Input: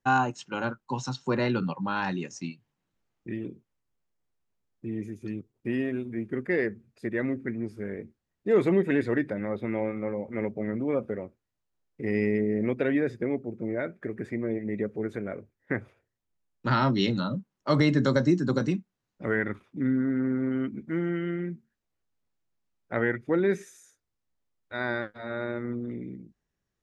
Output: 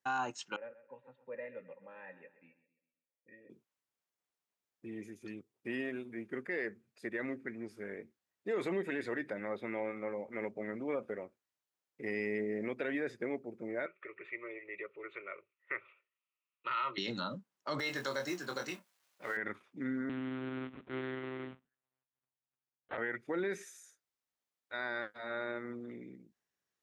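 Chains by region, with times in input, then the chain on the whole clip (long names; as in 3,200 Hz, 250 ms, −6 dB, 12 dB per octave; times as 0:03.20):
0:00.56–0:03.50: formant resonators in series e + notch comb filter 360 Hz + repeating echo 132 ms, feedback 43%, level −14.5 dB
0:13.86–0:16.98: loudspeaker in its box 240–4,400 Hz, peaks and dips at 280 Hz −10 dB, 470 Hz −9 dB, 840 Hz −4 dB, 1,300 Hz +7 dB, 1,800 Hz +7 dB, 2,600 Hz +10 dB + phaser with its sweep stopped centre 1,100 Hz, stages 8
0:17.79–0:19.37: mu-law and A-law mismatch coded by mu + parametric band 200 Hz −14.5 dB 1.6 octaves + double-tracking delay 22 ms −6 dB
0:20.09–0:22.98: one scale factor per block 3 bits + low-pass filter 1,200 Hz 6 dB per octave + one-pitch LPC vocoder at 8 kHz 130 Hz
whole clip: high-pass filter 750 Hz 6 dB per octave; brickwall limiter −25 dBFS; level −1.5 dB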